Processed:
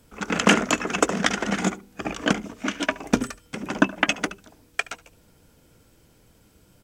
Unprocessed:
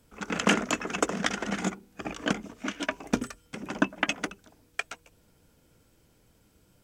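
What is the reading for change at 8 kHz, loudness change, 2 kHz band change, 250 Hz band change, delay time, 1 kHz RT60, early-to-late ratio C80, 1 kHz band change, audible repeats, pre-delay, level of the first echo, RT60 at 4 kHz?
+6.0 dB, +6.0 dB, +6.0 dB, +6.0 dB, 72 ms, no reverb, no reverb, +6.0 dB, 1, no reverb, -20.5 dB, no reverb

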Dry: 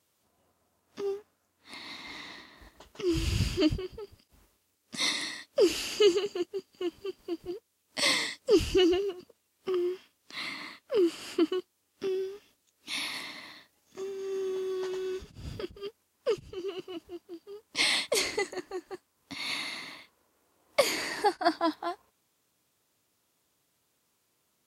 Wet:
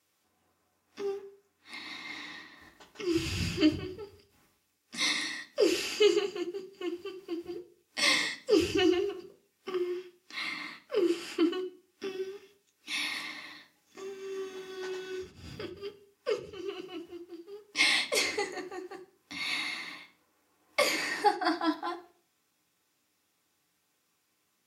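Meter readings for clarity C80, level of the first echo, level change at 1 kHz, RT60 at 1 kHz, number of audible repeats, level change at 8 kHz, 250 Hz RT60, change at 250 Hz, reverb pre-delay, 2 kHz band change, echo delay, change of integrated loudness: 19.0 dB, no echo, +0.5 dB, 0.40 s, no echo, -1.5 dB, 0.65 s, -0.5 dB, 3 ms, +2.5 dB, no echo, -0.5 dB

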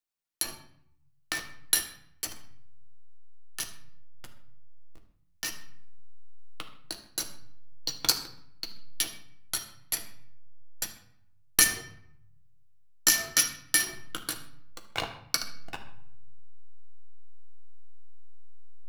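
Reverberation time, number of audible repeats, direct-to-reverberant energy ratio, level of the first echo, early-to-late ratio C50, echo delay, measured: 0.65 s, no echo, 3.5 dB, no echo, 9.5 dB, no echo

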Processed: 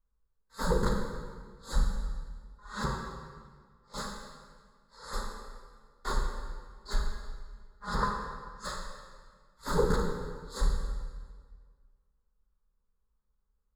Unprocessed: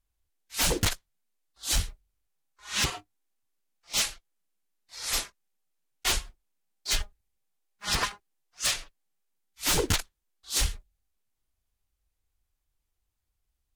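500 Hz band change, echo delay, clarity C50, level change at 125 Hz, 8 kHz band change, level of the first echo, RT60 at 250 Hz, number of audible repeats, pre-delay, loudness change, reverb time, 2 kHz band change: +3.5 dB, no echo, 3.0 dB, +0.5 dB, -17.0 dB, no echo, 1.9 s, no echo, 20 ms, -6.5 dB, 1.7 s, -7.5 dB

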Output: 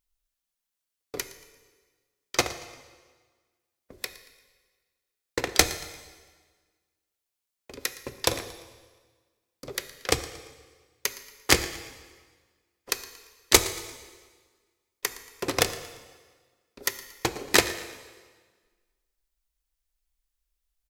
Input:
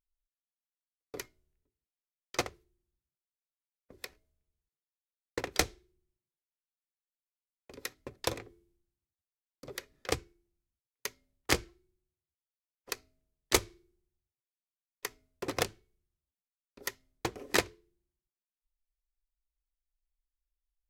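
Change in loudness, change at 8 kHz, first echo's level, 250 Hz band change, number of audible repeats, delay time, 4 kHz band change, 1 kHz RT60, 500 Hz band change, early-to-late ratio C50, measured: +8.5 dB, +11.0 dB, -19.0 dB, +6.5 dB, 2, 115 ms, +10.0 dB, 1.5 s, +6.5 dB, 11.5 dB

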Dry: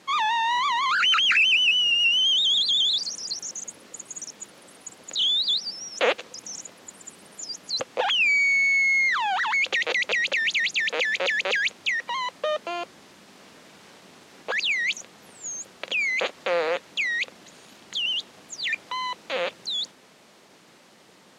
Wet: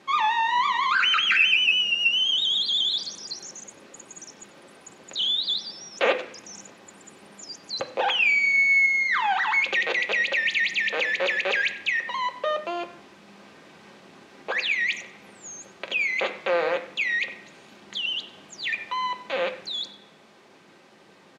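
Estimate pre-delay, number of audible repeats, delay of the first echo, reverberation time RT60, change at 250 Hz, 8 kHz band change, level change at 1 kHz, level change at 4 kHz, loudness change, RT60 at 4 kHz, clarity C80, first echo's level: 3 ms, 1, 94 ms, 0.65 s, +2.5 dB, -6.5 dB, +1.0 dB, -2.5 dB, -0.5 dB, 0.80 s, 14.0 dB, -17.5 dB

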